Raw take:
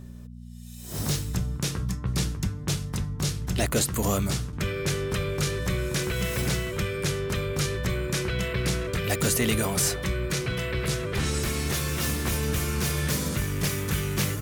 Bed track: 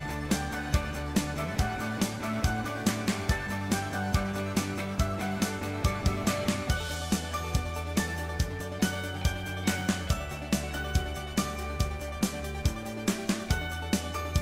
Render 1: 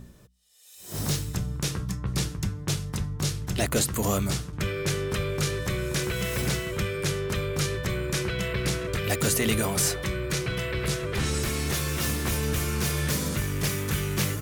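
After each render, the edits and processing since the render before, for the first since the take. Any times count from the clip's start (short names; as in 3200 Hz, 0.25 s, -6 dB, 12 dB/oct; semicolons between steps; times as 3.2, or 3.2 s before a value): de-hum 60 Hz, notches 4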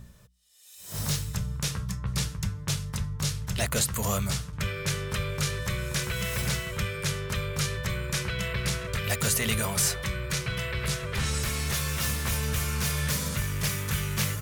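bell 320 Hz -13.5 dB 0.85 oct; notch 750 Hz, Q 12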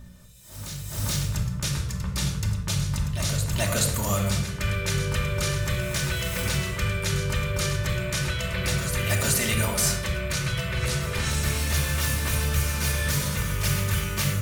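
on a send: reverse echo 0.428 s -9 dB; on the sum: shoebox room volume 2700 m³, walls furnished, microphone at 2.6 m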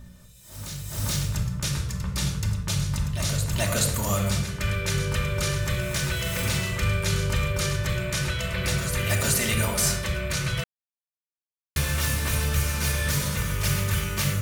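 6.23–7.53 doubler 39 ms -7 dB; 10.64–11.76 mute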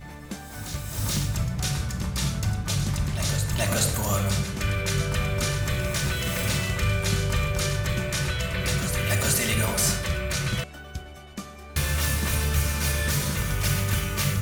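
add bed track -8 dB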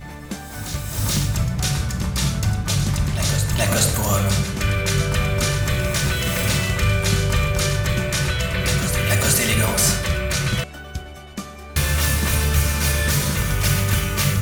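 gain +5.5 dB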